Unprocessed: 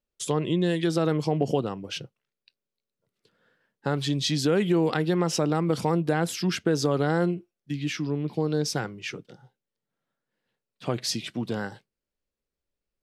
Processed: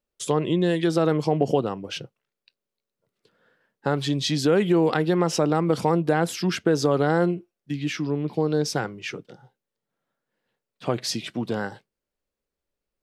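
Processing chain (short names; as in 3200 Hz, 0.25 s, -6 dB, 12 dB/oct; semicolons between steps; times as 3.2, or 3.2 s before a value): bell 710 Hz +4.5 dB 2.9 oct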